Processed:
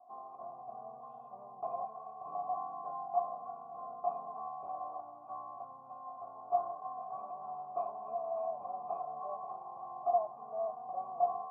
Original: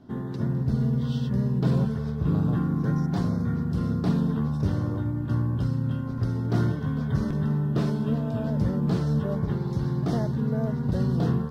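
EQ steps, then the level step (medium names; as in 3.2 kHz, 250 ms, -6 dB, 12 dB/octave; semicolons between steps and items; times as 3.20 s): cascade formant filter a; vowel filter a; bass shelf 130 Hz -9 dB; +15.0 dB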